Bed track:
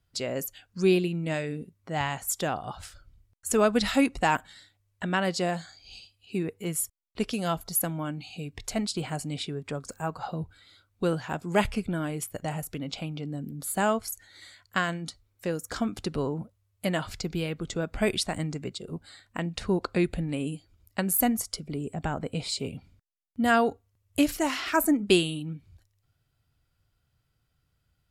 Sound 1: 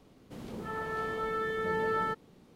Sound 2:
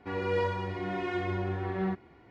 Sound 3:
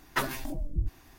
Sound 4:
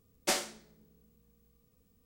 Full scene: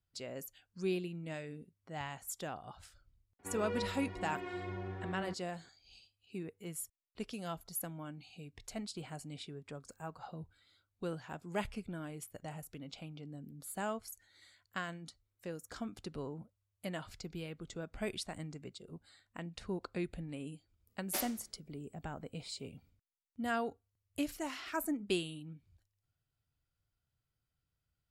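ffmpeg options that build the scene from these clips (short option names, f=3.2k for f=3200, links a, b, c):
-filter_complex "[0:a]volume=-13dB[a];[2:a]atrim=end=2.3,asetpts=PTS-STARTPTS,volume=-10dB,afade=t=in:d=0.004:c=hsin,afade=t=out:st=2.296:d=0.004:c=hsin,adelay=3390[b];[4:a]atrim=end=2.05,asetpts=PTS-STARTPTS,volume=-10dB,afade=t=in:d=0.02,afade=t=out:st=2.03:d=0.02,adelay=20860[c];[a][b][c]amix=inputs=3:normalize=0"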